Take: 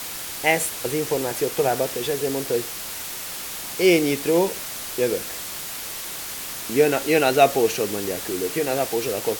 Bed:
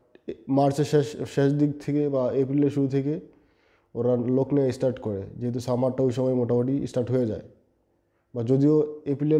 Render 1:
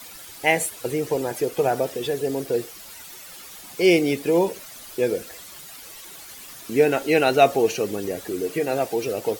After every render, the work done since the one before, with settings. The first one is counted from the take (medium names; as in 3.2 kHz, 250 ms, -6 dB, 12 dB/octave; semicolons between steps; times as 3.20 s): noise reduction 12 dB, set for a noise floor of -33 dBFS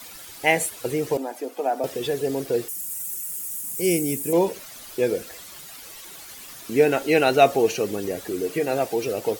1.17–1.84 s: rippled Chebyshev high-pass 190 Hz, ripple 9 dB; 2.68–4.33 s: FFT filter 210 Hz 0 dB, 730 Hz -12 dB, 2.9 kHz -9 dB, 4.1 kHz -13 dB, 8.2 kHz +12 dB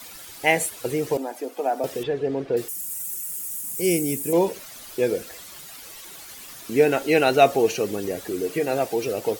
2.03–2.57 s: low-pass 2.6 kHz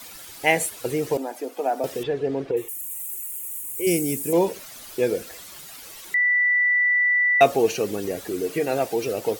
2.51–3.87 s: static phaser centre 980 Hz, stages 8; 6.14–7.41 s: bleep 1.97 kHz -16.5 dBFS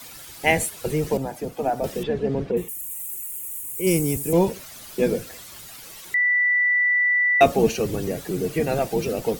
octave divider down 1 oct, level +1 dB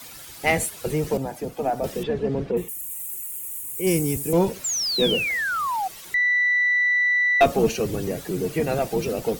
single-diode clipper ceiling -7 dBFS; 4.64–5.88 s: painted sound fall 730–7600 Hz -25 dBFS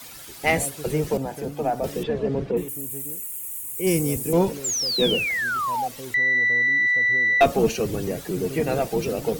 add bed -15 dB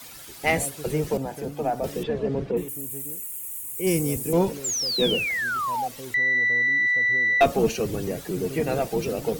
trim -1.5 dB